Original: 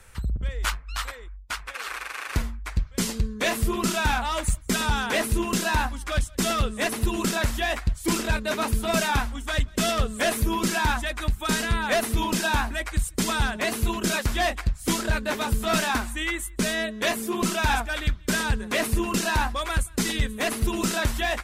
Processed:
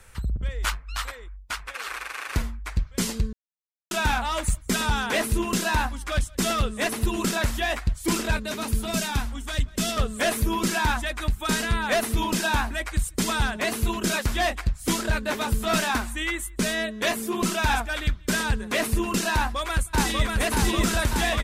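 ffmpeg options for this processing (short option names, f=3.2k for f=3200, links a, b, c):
-filter_complex "[0:a]asettb=1/sr,asplit=3[a][b][c];[a]atrim=end=8.384[d];[b]atrim=start=8.38:end=9.97,asetpts=PTS-STARTPTS,afade=t=in:d=0.004:c=qsin,afade=t=out:st=1.586:d=0.004:c=qsin,acrossover=split=310|3000[e][f][g];[f]acompressor=threshold=-42dB:ratio=1.5:attack=3.2:release=140:knee=2.83:detection=peak[h];[e][h][g]amix=inputs=3:normalize=0[i];[c]atrim=start=9.966[j];[d][i]acrossfade=d=0.004:c1=hsin:c2=qsin[k];[k][j]acrossfade=d=0.004:c1=qsin:c2=hsin,asplit=2[l][m];[m]afade=t=in:st=19.34:d=0.01,afade=t=out:st=20.36:d=0.01,aecho=0:1:590|1180|1770|2360|2950|3540|4130|4720|5310|5900|6490|7080:0.841395|0.631046|0.473285|0.354964|0.266223|0.199667|0.14975|0.112313|0.0842345|0.0631759|0.0473819|0.0355364[n];[l][n]amix=inputs=2:normalize=0,asplit=3[o][p][q];[o]atrim=end=3.33,asetpts=PTS-STARTPTS,afade=t=out:st=3.326:d=0.004:c=hsin[r];[p]atrim=start=3.33:end=3.91,asetpts=PTS-STARTPTS,volume=0[s];[q]atrim=start=3.91,asetpts=PTS-STARTPTS,afade=t=in:d=0.004:c=hsin[t];[r][s][t]concat=n=3:v=0:a=1"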